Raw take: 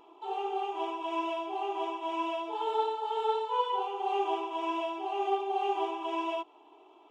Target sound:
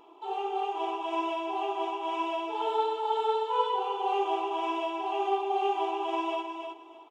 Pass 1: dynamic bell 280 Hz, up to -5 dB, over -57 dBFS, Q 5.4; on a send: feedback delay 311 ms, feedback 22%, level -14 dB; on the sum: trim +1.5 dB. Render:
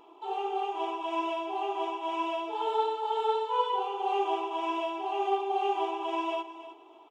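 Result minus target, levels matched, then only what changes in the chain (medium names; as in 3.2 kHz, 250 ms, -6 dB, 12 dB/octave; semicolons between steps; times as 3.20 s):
echo-to-direct -7 dB
change: feedback delay 311 ms, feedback 22%, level -7 dB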